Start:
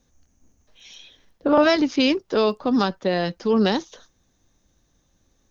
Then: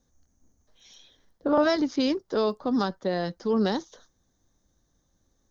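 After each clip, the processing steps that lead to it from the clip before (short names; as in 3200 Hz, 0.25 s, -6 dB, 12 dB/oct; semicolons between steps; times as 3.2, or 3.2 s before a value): bell 2600 Hz -11 dB 0.52 oct; gain -5 dB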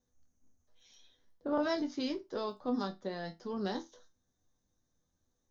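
resonator bank E2 minor, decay 0.21 s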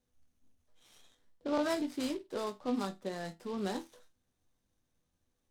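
noise-modulated delay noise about 3000 Hz, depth 0.03 ms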